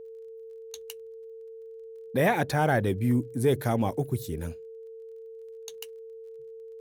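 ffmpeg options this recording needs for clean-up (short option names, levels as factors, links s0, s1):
-af "adeclick=t=4,bandreject=f=450:w=30"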